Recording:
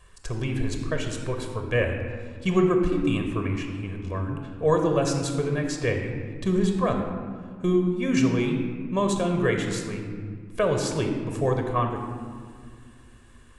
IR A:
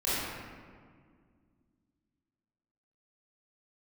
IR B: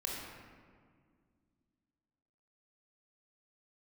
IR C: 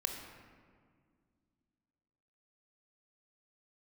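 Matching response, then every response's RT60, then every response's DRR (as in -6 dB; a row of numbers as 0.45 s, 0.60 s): C; 1.9 s, 1.9 s, 1.9 s; -11.5 dB, -2.5 dB, 3.5 dB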